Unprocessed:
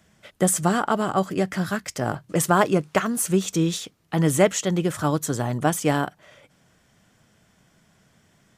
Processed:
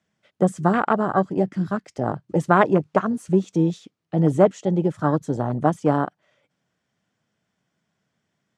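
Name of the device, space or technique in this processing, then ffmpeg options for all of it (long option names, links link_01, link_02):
over-cleaned archive recording: -af "highpass=110,lowpass=6600,afwtdn=0.0562,volume=2.5dB"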